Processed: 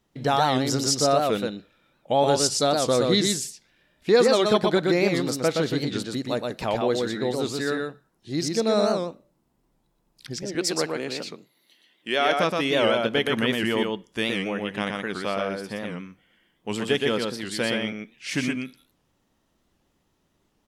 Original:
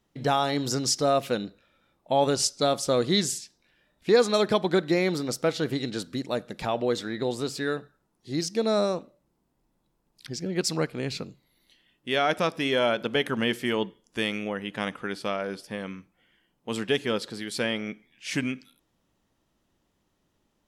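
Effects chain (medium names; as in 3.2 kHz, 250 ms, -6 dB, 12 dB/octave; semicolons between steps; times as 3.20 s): 10.43–12.39 s: high-pass 270 Hz 12 dB/octave; delay 121 ms -3.5 dB; warped record 78 rpm, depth 160 cents; trim +1.5 dB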